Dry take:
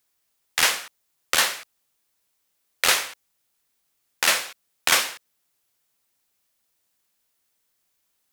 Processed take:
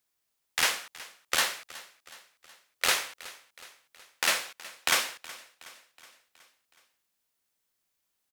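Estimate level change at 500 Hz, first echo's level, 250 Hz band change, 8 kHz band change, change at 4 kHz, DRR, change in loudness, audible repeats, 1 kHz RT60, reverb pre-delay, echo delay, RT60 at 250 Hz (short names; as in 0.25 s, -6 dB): -5.5 dB, -19.0 dB, -5.5 dB, -6.5 dB, -6.0 dB, none, -6.5 dB, 4, none, none, 0.37 s, none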